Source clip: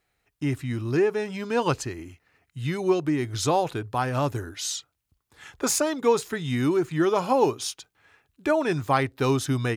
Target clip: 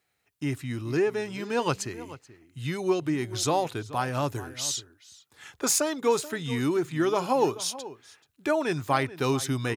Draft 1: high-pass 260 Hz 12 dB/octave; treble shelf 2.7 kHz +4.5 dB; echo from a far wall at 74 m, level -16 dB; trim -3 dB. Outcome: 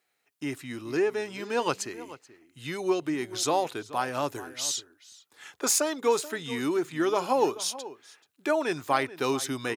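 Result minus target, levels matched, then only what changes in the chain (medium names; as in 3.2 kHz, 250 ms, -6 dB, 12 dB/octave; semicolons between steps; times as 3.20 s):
125 Hz band -10.0 dB
change: high-pass 89 Hz 12 dB/octave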